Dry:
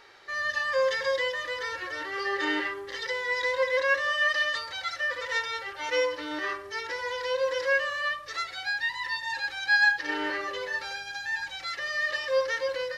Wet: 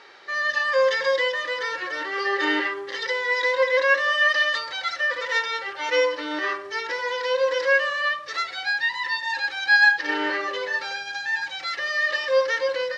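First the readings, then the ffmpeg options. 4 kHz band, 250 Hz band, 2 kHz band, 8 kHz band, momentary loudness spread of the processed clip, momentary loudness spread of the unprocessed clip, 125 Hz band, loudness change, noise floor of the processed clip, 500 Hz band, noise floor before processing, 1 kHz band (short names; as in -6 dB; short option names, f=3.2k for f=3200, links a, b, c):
+5.0 dB, +5.0 dB, +5.5 dB, +2.5 dB, 9 LU, 9 LU, n/a, +5.5 dB, -37 dBFS, +5.5 dB, -42 dBFS, +5.5 dB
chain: -af "highpass=190,lowpass=6.2k,volume=5.5dB"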